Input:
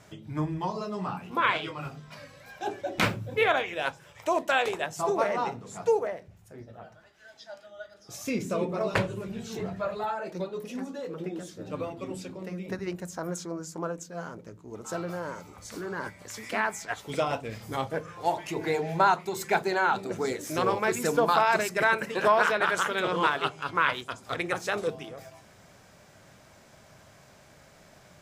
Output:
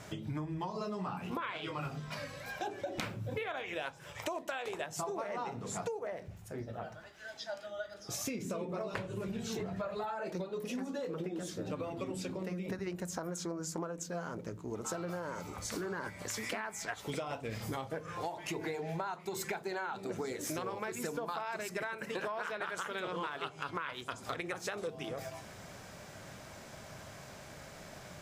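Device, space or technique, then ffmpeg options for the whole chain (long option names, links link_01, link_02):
serial compression, peaks first: -af "acompressor=threshold=-35dB:ratio=6,acompressor=threshold=-42dB:ratio=2.5,volume=5dB"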